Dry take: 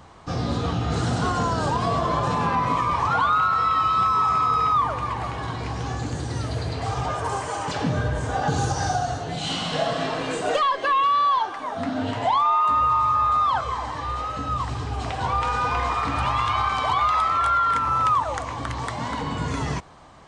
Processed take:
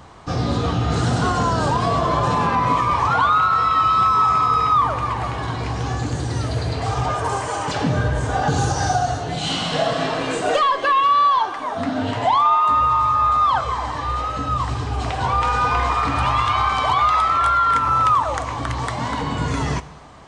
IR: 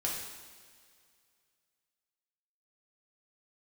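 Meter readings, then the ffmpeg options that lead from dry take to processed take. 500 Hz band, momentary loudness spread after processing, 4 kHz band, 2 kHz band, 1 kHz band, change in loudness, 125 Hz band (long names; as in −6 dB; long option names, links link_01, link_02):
+4.0 dB, 9 LU, +4.0 dB, +4.0 dB, +4.0 dB, +4.0 dB, +4.5 dB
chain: -filter_complex "[0:a]acontrast=36,asplit=2[link_01][link_02];[1:a]atrim=start_sample=2205[link_03];[link_02][link_03]afir=irnorm=-1:irlink=0,volume=-16.5dB[link_04];[link_01][link_04]amix=inputs=2:normalize=0,volume=-2.5dB"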